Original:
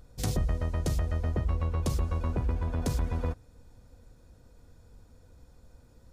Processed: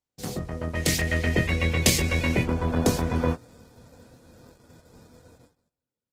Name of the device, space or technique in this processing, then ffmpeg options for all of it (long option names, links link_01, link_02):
video call: -filter_complex "[0:a]asplit=3[link_01][link_02][link_03];[link_01]afade=type=out:start_time=0.74:duration=0.02[link_04];[link_02]highshelf=frequency=1600:width_type=q:width=3:gain=9,afade=type=in:start_time=0.74:duration=0.02,afade=type=out:start_time=2.42:duration=0.02[link_05];[link_03]afade=type=in:start_time=2.42:duration=0.02[link_06];[link_04][link_05][link_06]amix=inputs=3:normalize=0,highpass=140,asplit=2[link_07][link_08];[link_08]adelay=24,volume=-4.5dB[link_09];[link_07][link_09]amix=inputs=2:normalize=0,dynaudnorm=framelen=230:gausssize=7:maxgain=10dB,agate=range=-33dB:threshold=-51dB:ratio=16:detection=peak" -ar 48000 -c:a libopus -b:a 16k